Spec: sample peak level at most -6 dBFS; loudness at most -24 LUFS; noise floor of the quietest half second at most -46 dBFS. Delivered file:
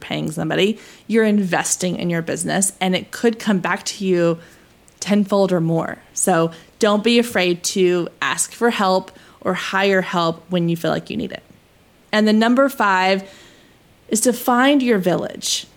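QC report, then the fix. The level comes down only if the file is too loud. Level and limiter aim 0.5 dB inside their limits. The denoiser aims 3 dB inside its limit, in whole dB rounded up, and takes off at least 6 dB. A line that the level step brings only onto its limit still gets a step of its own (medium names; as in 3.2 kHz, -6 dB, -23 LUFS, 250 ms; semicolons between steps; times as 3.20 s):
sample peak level -4.5 dBFS: fail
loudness -18.5 LUFS: fail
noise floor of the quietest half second -53 dBFS: pass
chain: trim -6 dB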